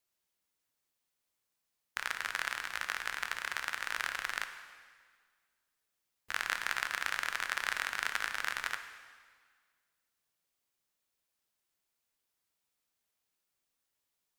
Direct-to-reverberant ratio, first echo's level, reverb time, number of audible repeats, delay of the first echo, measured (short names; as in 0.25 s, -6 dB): 7.5 dB, none, 1.7 s, none, none